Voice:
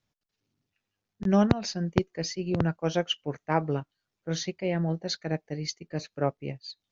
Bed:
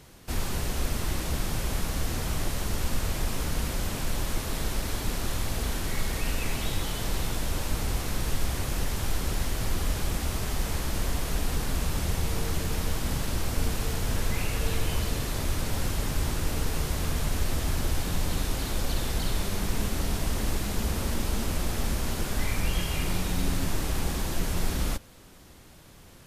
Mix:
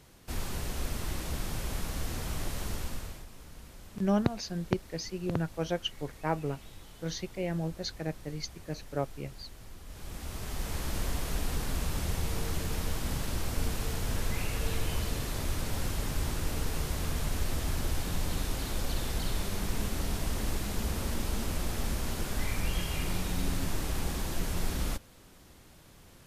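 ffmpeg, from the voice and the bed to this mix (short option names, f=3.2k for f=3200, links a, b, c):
-filter_complex "[0:a]adelay=2750,volume=-5dB[a];[1:a]volume=10.5dB,afade=t=out:st=2.69:d=0.57:silence=0.188365,afade=t=in:st=9.86:d=1.04:silence=0.158489[b];[a][b]amix=inputs=2:normalize=0"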